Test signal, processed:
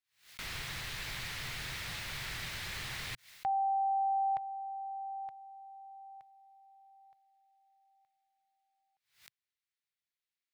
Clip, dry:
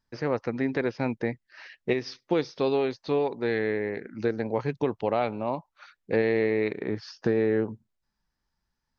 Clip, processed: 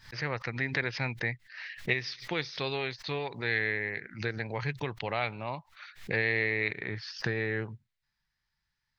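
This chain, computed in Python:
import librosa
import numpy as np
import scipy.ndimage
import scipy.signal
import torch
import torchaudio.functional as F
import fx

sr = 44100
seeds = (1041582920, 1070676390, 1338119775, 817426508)

y = fx.graphic_eq(x, sr, hz=(125, 250, 500, 2000, 4000), db=(8, -8, -4, 11, 8))
y = fx.pre_swell(y, sr, db_per_s=140.0)
y = y * 10.0 ** (-6.0 / 20.0)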